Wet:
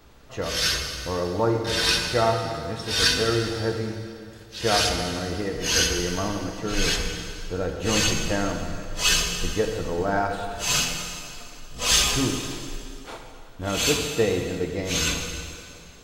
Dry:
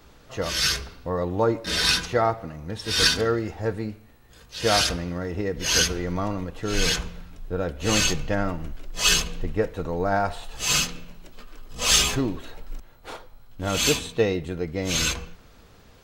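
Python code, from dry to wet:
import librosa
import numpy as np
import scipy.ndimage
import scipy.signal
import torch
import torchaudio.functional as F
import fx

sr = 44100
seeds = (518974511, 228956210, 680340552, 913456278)

y = fx.rev_plate(x, sr, seeds[0], rt60_s=2.5, hf_ratio=0.9, predelay_ms=0, drr_db=3.0)
y = y * 10.0 ** (-1.5 / 20.0)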